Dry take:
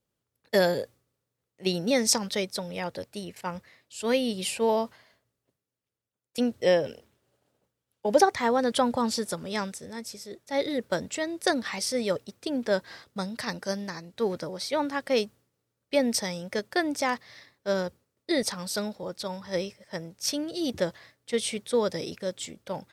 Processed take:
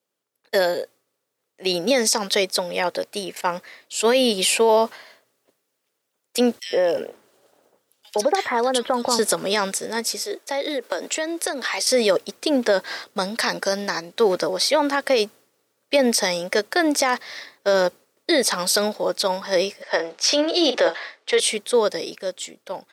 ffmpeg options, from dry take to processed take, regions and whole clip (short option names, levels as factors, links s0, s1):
-filter_complex "[0:a]asettb=1/sr,asplit=3[s0][s1][s2];[s0]atrim=end=6.594[s3];[s1]atrim=start=6.59:end=9.19,asetpts=PTS-STARTPTS,afade=t=in:d=0.004:c=qsin,afade=t=out:st=2.596:d=0.004:c=qsin,acompressor=threshold=0.02:ratio=3:attack=3.2:release=140:knee=1:detection=peak,acrossover=split=2200[s4][s5];[s4]adelay=110[s6];[s6][s5]amix=inputs=2:normalize=0,atrim=end_sample=114660[s7];[s2]atrim=start=9.186[s8];[s3][s7]acrossfade=d=0.004:c1=hsin:c2=qsin[s9];[s9][s8]acrossfade=d=0.004:c1=qsin:c2=hsin,asettb=1/sr,asplit=3[s10][s11][s12];[s10]atrim=end=10.224[s13];[s11]atrim=start=10.22:end=11.87,asetpts=PTS-STARTPTS,afade=t=in:d=0.004:c=qsin,afade=t=out:st=1.646:d=0.004:c=qsin,highpass=f=280:w=0.5412,highpass=f=280:w=1.3066,acompressor=threshold=0.0178:ratio=8:attack=3.2:release=140:knee=1:detection=peak[s14];[s12]atrim=start=11.866[s15];[s13][s14]acrossfade=d=0.004:c1=hsin:c2=qsin[s16];[s16][s15]acrossfade=d=0.004:c1=qsin:c2=hsin,asettb=1/sr,asplit=3[s17][s18][s19];[s17]atrim=end=19.824[s20];[s18]atrim=start=19.82:end=21.4,asetpts=PTS-STARTPTS,afade=t=in:d=0.004:c=qsin,afade=t=out:st=1.576:d=0.004:c=qsin,acontrast=76,highpass=450,lowpass=4100,asplit=2[s21][s22];[s22]adelay=41,volume=0.237[s23];[s21][s23]amix=inputs=2:normalize=0,atrim=end_sample=69678[s24];[s19]atrim=start=21.396[s25];[s20][s24]acrossfade=d=0.004:c1=hsin:c2=qsin[s26];[s26][s25]acrossfade=d=0.004:c1=qsin:c2=hsin,highpass=350,dynaudnorm=f=170:g=17:m=3.76,alimiter=level_in=3.98:limit=0.891:release=50:level=0:latency=1,volume=0.398"